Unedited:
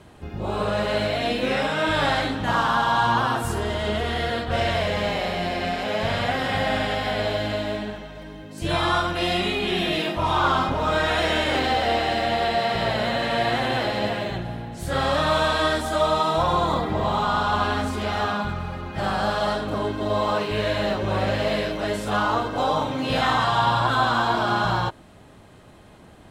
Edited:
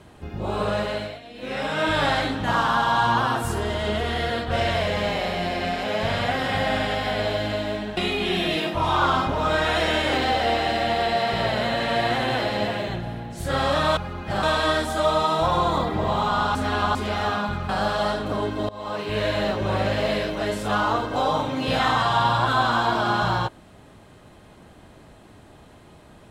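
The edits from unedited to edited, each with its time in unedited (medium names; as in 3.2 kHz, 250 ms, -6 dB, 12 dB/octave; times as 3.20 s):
0.73–1.81 s: dip -18.5 dB, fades 0.48 s
7.97–9.39 s: delete
17.51–17.91 s: reverse
18.65–19.11 s: move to 15.39 s
20.11–20.63 s: fade in linear, from -23.5 dB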